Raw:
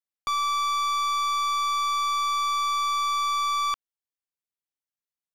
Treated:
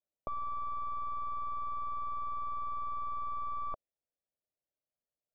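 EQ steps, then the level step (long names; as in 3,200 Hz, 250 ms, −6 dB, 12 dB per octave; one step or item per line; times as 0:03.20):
low-pass with resonance 610 Hz, resonance Q 4.9
high-frequency loss of the air 140 metres
low-shelf EQ 320 Hz +7.5 dB
−3.5 dB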